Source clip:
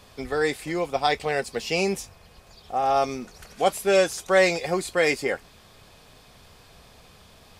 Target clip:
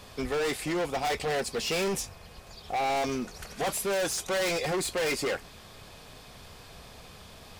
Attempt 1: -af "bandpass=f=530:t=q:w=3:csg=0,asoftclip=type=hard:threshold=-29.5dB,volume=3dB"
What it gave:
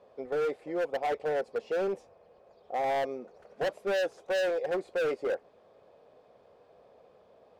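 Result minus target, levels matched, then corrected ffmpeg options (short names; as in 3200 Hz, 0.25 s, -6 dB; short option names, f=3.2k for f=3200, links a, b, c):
500 Hz band +3.0 dB
-af "asoftclip=type=hard:threshold=-29.5dB,volume=3dB"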